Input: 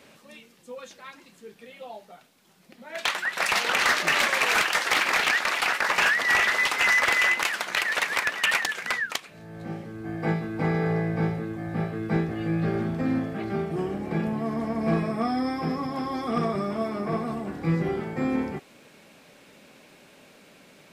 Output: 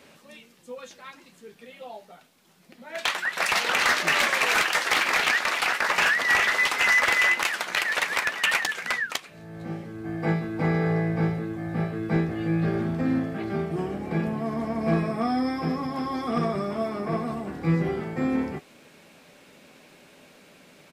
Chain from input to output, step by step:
double-tracking delay 12 ms −13 dB

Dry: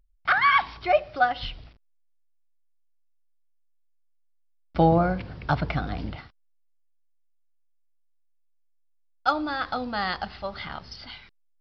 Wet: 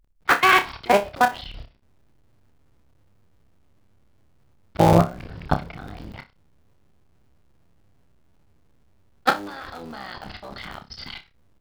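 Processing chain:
sub-harmonics by changed cycles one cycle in 3, muted
output level in coarse steps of 23 dB
flutter between parallel walls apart 5.1 metres, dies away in 0.22 s
level +8.5 dB

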